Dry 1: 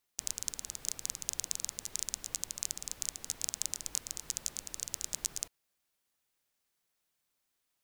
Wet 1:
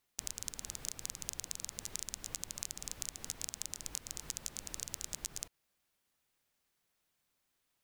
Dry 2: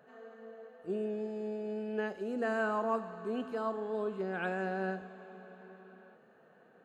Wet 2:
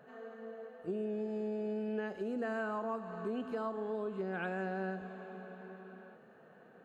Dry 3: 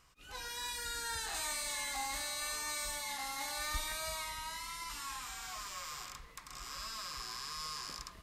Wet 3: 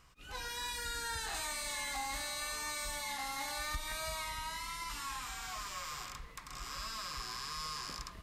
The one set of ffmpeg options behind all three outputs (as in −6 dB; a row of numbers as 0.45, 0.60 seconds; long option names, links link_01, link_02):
-af "bass=frequency=250:gain=3,treble=frequency=4000:gain=-3,acompressor=threshold=-37dB:ratio=5,volume=2.5dB"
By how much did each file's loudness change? −4.5, −3.0, 0.0 LU